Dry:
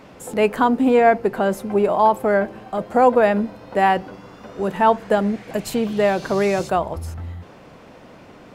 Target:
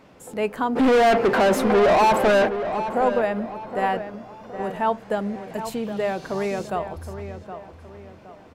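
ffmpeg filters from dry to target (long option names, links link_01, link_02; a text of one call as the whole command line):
ffmpeg -i in.wav -filter_complex "[0:a]asplit=3[link_01][link_02][link_03];[link_01]afade=type=out:start_time=0.75:duration=0.02[link_04];[link_02]asplit=2[link_05][link_06];[link_06]highpass=frequency=720:poles=1,volume=33dB,asoftclip=type=tanh:threshold=-3dB[link_07];[link_05][link_07]amix=inputs=2:normalize=0,lowpass=frequency=2200:poles=1,volume=-6dB,afade=type=in:start_time=0.75:duration=0.02,afade=type=out:start_time=2.47:duration=0.02[link_08];[link_03]afade=type=in:start_time=2.47:duration=0.02[link_09];[link_04][link_08][link_09]amix=inputs=3:normalize=0,asplit=2[link_10][link_11];[link_11]adelay=767,lowpass=frequency=2500:poles=1,volume=-10dB,asplit=2[link_12][link_13];[link_13]adelay=767,lowpass=frequency=2500:poles=1,volume=0.4,asplit=2[link_14][link_15];[link_15]adelay=767,lowpass=frequency=2500:poles=1,volume=0.4,asplit=2[link_16][link_17];[link_17]adelay=767,lowpass=frequency=2500:poles=1,volume=0.4[link_18];[link_10][link_12][link_14][link_16][link_18]amix=inputs=5:normalize=0,volume=-7dB" out.wav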